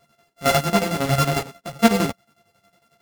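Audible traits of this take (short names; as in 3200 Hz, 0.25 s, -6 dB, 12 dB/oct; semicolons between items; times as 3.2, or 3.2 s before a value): a buzz of ramps at a fixed pitch in blocks of 64 samples; chopped level 11 Hz, depth 65%, duty 55%; a shimmering, thickened sound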